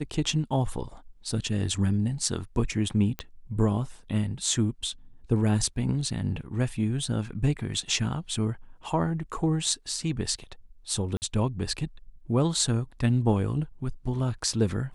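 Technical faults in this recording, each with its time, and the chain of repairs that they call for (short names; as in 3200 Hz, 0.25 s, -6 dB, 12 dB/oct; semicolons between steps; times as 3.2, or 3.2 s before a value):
3.19 pop -17 dBFS
11.17–11.22 gap 49 ms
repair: de-click; interpolate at 11.17, 49 ms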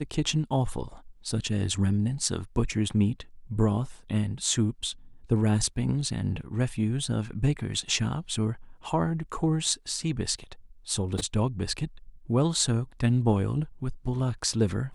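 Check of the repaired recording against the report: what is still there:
none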